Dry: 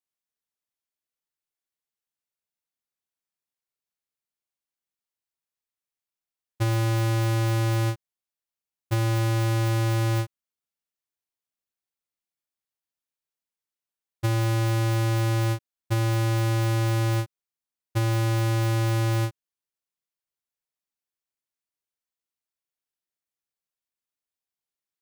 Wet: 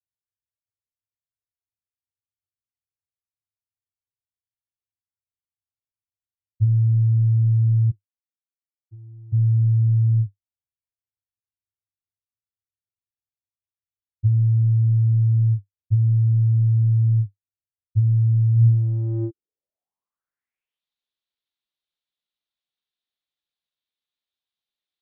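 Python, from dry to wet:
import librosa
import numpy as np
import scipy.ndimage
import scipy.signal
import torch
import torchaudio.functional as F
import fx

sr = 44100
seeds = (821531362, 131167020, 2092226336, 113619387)

y = fx.filter_sweep_lowpass(x, sr, from_hz=100.0, to_hz=3700.0, start_s=18.54, end_s=20.86, q=4.9)
y = fx.vowel_filter(y, sr, vowel='u', at=(7.9, 9.32), fade=0.02)
y = y * 10.0 ** (-2.0 / 20.0)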